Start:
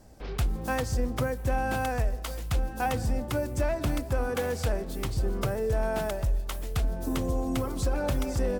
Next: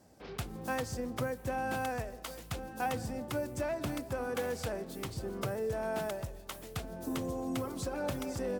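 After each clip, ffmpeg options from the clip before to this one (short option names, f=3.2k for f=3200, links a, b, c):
-af "highpass=120,volume=-5dB"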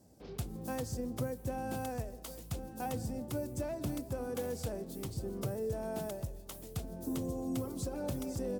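-af "equalizer=f=1.7k:t=o:w=2.6:g=-12.5,volume=1.5dB"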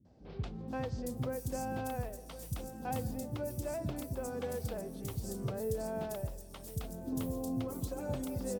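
-filter_complex "[0:a]acrossover=split=300|4600[a][b][c];[b]adelay=50[d];[c]adelay=680[e];[a][d][e]amix=inputs=3:normalize=0,volume=1dB"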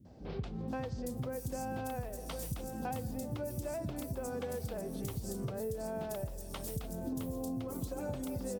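-af "acompressor=threshold=-43dB:ratio=6,volume=7.5dB"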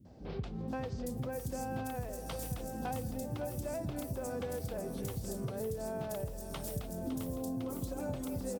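-af "aecho=1:1:559|1118|1677|2236:0.299|0.116|0.0454|0.0177"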